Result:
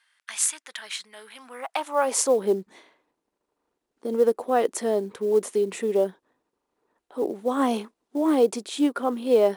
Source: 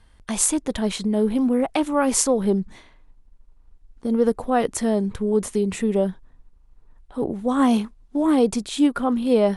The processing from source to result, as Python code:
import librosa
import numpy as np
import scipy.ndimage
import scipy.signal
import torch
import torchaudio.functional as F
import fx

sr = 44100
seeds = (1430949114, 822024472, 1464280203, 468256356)

y = fx.filter_sweep_highpass(x, sr, from_hz=1700.0, to_hz=380.0, start_s=1.33, end_s=2.35, q=1.6)
y = fx.quant_float(y, sr, bits=4)
y = y * librosa.db_to_amplitude(-3.5)